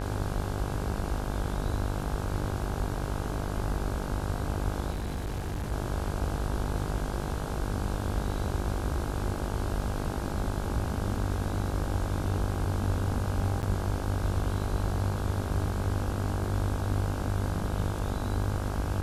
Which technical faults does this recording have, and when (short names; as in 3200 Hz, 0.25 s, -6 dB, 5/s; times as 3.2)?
buzz 50 Hz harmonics 33 -34 dBFS
4.9–5.73 clipped -29 dBFS
13.62–13.63 gap 9.8 ms